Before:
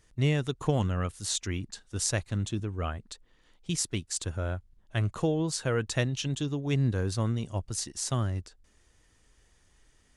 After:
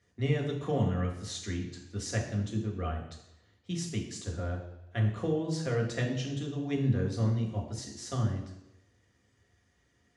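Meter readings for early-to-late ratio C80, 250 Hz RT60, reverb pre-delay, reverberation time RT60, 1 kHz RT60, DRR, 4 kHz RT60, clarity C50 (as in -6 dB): 9.5 dB, 0.80 s, 3 ms, 0.85 s, 0.85 s, -1.0 dB, 0.90 s, 7.0 dB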